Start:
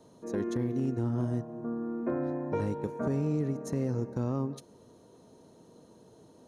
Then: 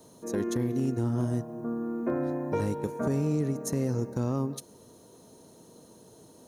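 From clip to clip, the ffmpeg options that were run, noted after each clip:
-af "aemphasis=mode=production:type=50fm,volume=2.5dB"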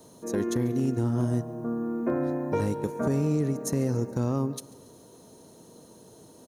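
-af "aecho=1:1:141|282|423|564:0.075|0.0397|0.0211|0.0112,volume=2dB"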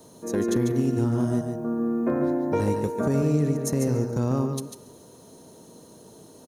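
-af "aecho=1:1:146:0.473,volume=2dB"

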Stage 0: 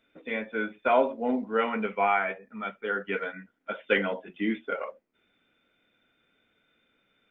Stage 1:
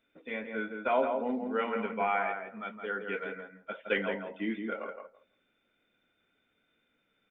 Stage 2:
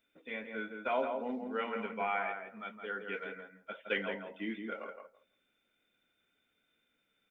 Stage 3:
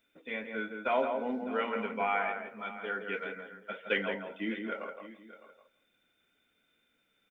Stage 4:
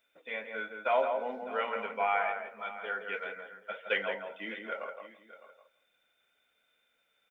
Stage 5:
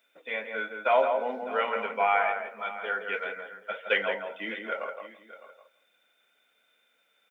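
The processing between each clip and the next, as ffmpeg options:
-filter_complex "[0:a]asplit=2[a][b];[b]adelay=166,lowpass=f=1.6k:p=1,volume=-4.5dB,asplit=2[c][d];[d]adelay=166,lowpass=f=1.6k:p=1,volume=0.16,asplit=2[e][f];[f]adelay=166,lowpass=f=1.6k:p=1,volume=0.16[g];[a][c][e][g]amix=inputs=4:normalize=0,volume=-5.5dB"
-af "highshelf=f=3.2k:g=9,volume=-5.5dB"
-af "aecho=1:1:608:0.168,volume=3.5dB"
-af "lowshelf=f=420:t=q:w=1.5:g=-9"
-af "highpass=170,volume=5dB"

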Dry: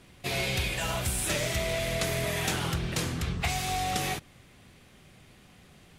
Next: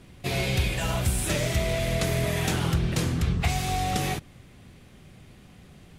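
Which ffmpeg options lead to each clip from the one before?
-af "lowshelf=f=430:g=7.5"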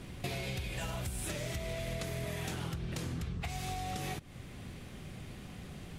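-af "alimiter=limit=-21.5dB:level=0:latency=1:release=479,acompressor=threshold=-39dB:ratio=6,volume=3.5dB"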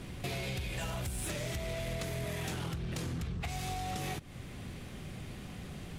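-af "asoftclip=type=tanh:threshold=-32dB,volume=2.5dB"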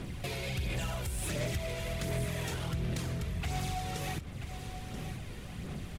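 -af "aphaser=in_gain=1:out_gain=1:delay=2.2:decay=0.41:speed=1.4:type=sinusoidal,aecho=1:1:983:0.299"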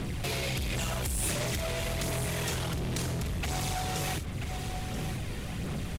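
-filter_complex "[0:a]acrossover=split=4100[a][b];[a]asoftclip=type=hard:threshold=-38dB[c];[b]asplit=2[d][e];[e]adelay=48,volume=-7dB[f];[d][f]amix=inputs=2:normalize=0[g];[c][g]amix=inputs=2:normalize=0,volume=7.5dB"

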